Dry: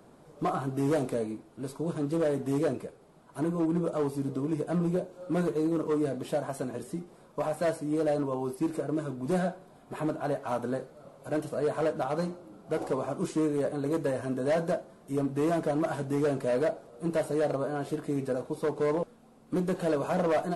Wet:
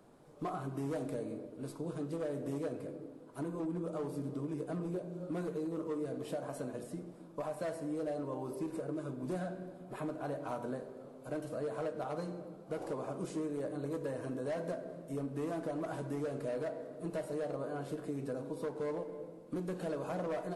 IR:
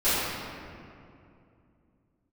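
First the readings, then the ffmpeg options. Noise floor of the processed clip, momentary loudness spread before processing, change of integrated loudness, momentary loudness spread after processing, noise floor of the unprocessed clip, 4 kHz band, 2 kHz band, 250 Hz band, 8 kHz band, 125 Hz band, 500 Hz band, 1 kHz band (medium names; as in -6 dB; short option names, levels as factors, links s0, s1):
-53 dBFS, 8 LU, -9.0 dB, 6 LU, -56 dBFS, -9.5 dB, -9.5 dB, -8.5 dB, -8.5 dB, -8.5 dB, -9.0 dB, -9.5 dB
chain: -filter_complex "[0:a]asplit=2[s0][s1];[s1]equalizer=f=320:t=o:w=1.4:g=5[s2];[1:a]atrim=start_sample=2205,asetrate=83790,aresample=44100[s3];[s2][s3]afir=irnorm=-1:irlink=0,volume=0.0794[s4];[s0][s4]amix=inputs=2:normalize=0,acompressor=threshold=0.0355:ratio=3,volume=0.473"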